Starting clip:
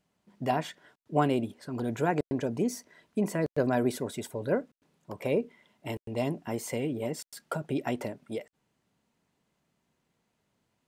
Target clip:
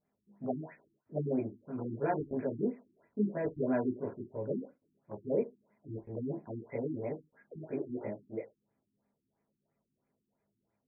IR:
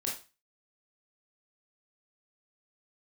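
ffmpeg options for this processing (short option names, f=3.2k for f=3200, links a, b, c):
-filter_complex "[0:a]asettb=1/sr,asplit=3[a][b][c];[a]atrim=end=7.544[d];[b]atrim=start=7.54:end=7.98,asetpts=PTS-STARTPTS,afade=t=in:d=0.004:c=qsin,afade=t=out:st=0.436:d=0.004:c=qsin,asplit=2[e][f];[f]highpass=f=720:p=1,volume=12dB,asoftclip=type=tanh:threshold=-18.5dB[g];[e][g]amix=inputs=2:normalize=0,lowpass=f=1.6k:p=1,volume=-6dB[h];[c]atrim=start=7.976[i];[d][h]acrossfade=d=0.004:c1=hsin:c2=qsin[j];[j][i]acrossfade=d=0.004:c1=qsin:c2=hsin[k];[1:a]atrim=start_sample=2205,asetrate=66150,aresample=44100[l];[k][l]afir=irnorm=-1:irlink=0,afftfilt=real='re*lt(b*sr/1024,360*pow(2600/360,0.5+0.5*sin(2*PI*3*pts/sr)))':imag='im*lt(b*sr/1024,360*pow(2600/360,0.5+0.5*sin(2*PI*3*pts/sr)))':win_size=1024:overlap=0.75,volume=-4.5dB"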